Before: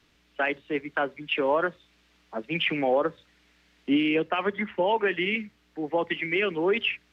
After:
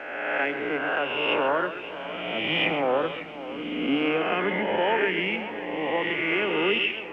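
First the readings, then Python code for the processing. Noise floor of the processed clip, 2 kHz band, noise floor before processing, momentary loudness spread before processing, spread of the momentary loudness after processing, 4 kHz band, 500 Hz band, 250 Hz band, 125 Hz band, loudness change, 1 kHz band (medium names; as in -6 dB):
-37 dBFS, +3.5 dB, -65 dBFS, 8 LU, 9 LU, +4.0 dB, +1.0 dB, 0.0 dB, +1.0 dB, +1.0 dB, +2.0 dB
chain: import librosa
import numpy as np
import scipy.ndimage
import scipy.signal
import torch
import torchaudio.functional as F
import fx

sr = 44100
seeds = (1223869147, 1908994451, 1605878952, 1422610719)

y = fx.spec_swells(x, sr, rise_s=1.65)
y = y + 10.0 ** (-11.0 / 20.0) * np.pad(y, (int(132 * sr / 1000.0), 0))[:len(y)]
y = fx.echo_warbled(y, sr, ms=550, feedback_pct=58, rate_hz=2.8, cents=88, wet_db=-14)
y = F.gain(torch.from_numpy(y), -3.5).numpy()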